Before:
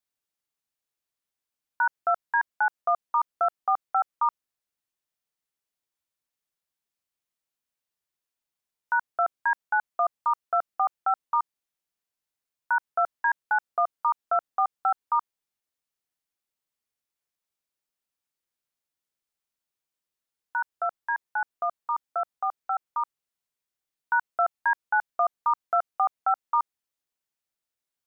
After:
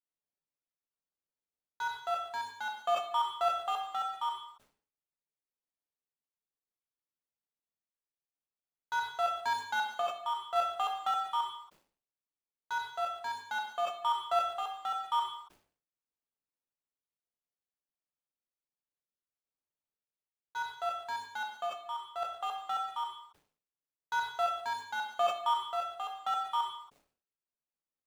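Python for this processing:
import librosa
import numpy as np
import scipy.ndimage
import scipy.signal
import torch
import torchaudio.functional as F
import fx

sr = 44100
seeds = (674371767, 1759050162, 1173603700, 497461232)

y = scipy.signal.medfilt(x, 25)
y = fx.tremolo_random(y, sr, seeds[0], hz=1.8, depth_pct=55)
y = fx.rev_gated(y, sr, seeds[1], gate_ms=300, shape='falling', drr_db=0.5)
y = fx.sustainer(y, sr, db_per_s=130.0)
y = y * librosa.db_to_amplitude(-5.0)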